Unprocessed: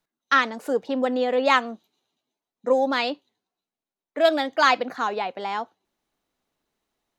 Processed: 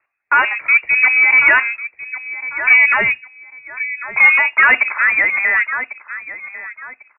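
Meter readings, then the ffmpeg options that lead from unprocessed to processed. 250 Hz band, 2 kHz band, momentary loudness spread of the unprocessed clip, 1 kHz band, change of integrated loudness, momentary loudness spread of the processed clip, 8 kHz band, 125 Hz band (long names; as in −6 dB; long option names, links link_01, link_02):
below −10 dB, +18.0 dB, 14 LU, +2.5 dB, +11.0 dB, 19 LU, below −35 dB, can't be measured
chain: -filter_complex "[0:a]aecho=1:1:1097|2194:0.133|0.032,asplit=2[link_01][link_02];[link_02]highpass=frequency=720:poles=1,volume=20dB,asoftclip=type=tanh:threshold=-5dB[link_03];[link_01][link_03]amix=inputs=2:normalize=0,lowpass=frequency=1200:poles=1,volume=-6dB,lowpass=frequency=2400:width_type=q:width=0.5098,lowpass=frequency=2400:width_type=q:width=0.6013,lowpass=frequency=2400:width_type=q:width=0.9,lowpass=frequency=2400:width_type=q:width=2.563,afreqshift=-2800,volume=4.5dB"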